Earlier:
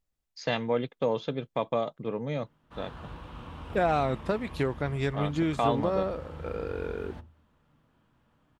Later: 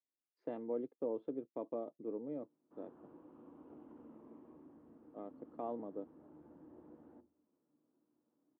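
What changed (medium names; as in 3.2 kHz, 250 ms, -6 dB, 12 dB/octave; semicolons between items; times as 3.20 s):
second voice: muted; master: add ladder band-pass 350 Hz, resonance 60%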